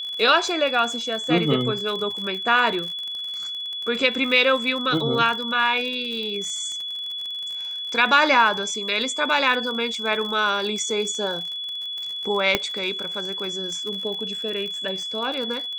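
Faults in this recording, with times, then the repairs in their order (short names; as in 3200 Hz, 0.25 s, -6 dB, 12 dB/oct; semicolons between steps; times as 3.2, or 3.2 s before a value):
crackle 53/s -29 dBFS
tone 3400 Hz -28 dBFS
12.55 pop -4 dBFS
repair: de-click; notch 3400 Hz, Q 30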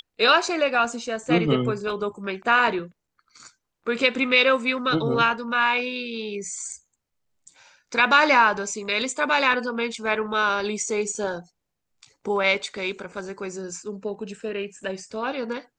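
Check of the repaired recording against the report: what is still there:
none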